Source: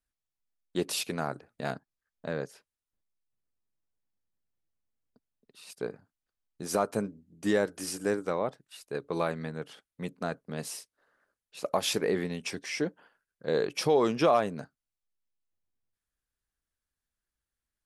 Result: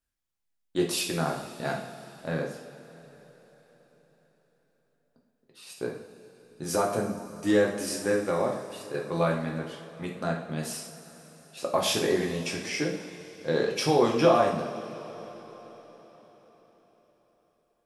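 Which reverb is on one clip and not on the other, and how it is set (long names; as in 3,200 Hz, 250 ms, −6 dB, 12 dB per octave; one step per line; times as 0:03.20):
coupled-rooms reverb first 0.59 s, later 4.8 s, from −17 dB, DRR −1 dB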